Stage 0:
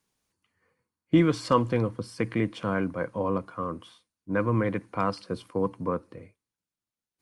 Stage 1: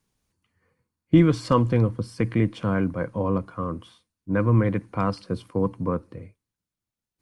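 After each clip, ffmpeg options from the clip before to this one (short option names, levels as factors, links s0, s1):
-af "lowshelf=f=190:g=11.5"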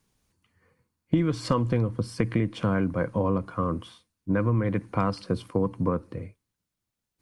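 -af "acompressor=threshold=0.0631:ratio=6,volume=1.5"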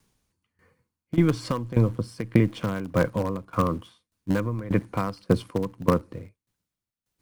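-filter_complex "[0:a]asplit=2[s0][s1];[s1]acrusher=bits=4:dc=4:mix=0:aa=0.000001,volume=0.266[s2];[s0][s2]amix=inputs=2:normalize=0,aeval=exprs='val(0)*pow(10,-18*if(lt(mod(1.7*n/s,1),2*abs(1.7)/1000),1-mod(1.7*n/s,1)/(2*abs(1.7)/1000),(mod(1.7*n/s,1)-2*abs(1.7)/1000)/(1-2*abs(1.7)/1000))/20)':c=same,volume=1.88"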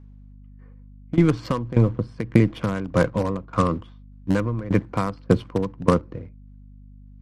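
-af "adynamicsmooth=sensitivity=7:basefreq=2000,aeval=exprs='val(0)+0.00447*(sin(2*PI*50*n/s)+sin(2*PI*2*50*n/s)/2+sin(2*PI*3*50*n/s)/3+sin(2*PI*4*50*n/s)/4+sin(2*PI*5*50*n/s)/5)':c=same,volume=1.5" -ar 44100 -c:a libmp3lame -b:a 56k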